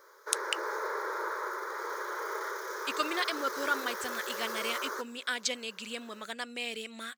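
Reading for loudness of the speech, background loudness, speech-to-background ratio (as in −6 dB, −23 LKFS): −35.0 LKFS, −36.5 LKFS, 1.5 dB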